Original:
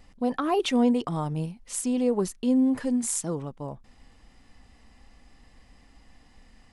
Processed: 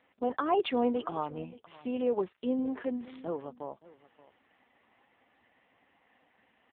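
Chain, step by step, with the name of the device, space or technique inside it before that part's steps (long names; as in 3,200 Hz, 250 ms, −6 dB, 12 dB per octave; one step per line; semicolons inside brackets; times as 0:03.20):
satellite phone (band-pass filter 380–3,300 Hz; single-tap delay 573 ms −20 dB; AMR narrowband 5.9 kbit/s 8,000 Hz)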